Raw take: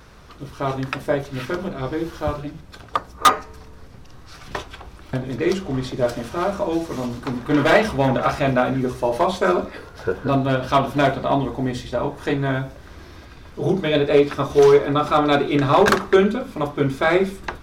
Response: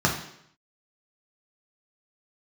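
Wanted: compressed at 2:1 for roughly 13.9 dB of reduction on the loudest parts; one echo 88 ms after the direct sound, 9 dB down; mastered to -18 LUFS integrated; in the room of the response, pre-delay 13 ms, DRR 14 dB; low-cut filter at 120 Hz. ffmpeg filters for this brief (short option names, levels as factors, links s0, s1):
-filter_complex "[0:a]highpass=120,acompressor=threshold=0.0158:ratio=2,aecho=1:1:88:0.355,asplit=2[s0][s1];[1:a]atrim=start_sample=2205,adelay=13[s2];[s1][s2]afir=irnorm=-1:irlink=0,volume=0.0355[s3];[s0][s3]amix=inputs=2:normalize=0,volume=4.73"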